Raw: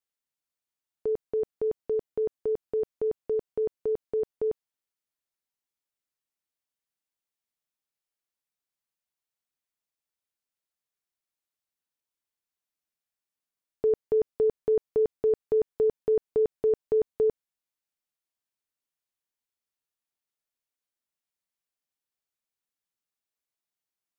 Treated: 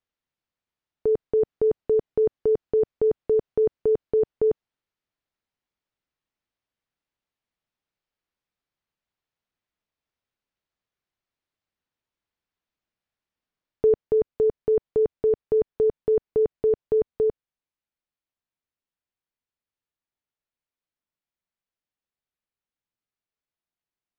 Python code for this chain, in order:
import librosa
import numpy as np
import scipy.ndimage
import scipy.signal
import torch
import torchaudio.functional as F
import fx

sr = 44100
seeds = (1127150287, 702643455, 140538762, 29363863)

y = fx.air_absorb(x, sr, metres=170.0)
y = fx.rider(y, sr, range_db=10, speed_s=0.5)
y = fx.low_shelf(y, sr, hz=190.0, db=6.0)
y = y * 10.0 ** (4.0 / 20.0)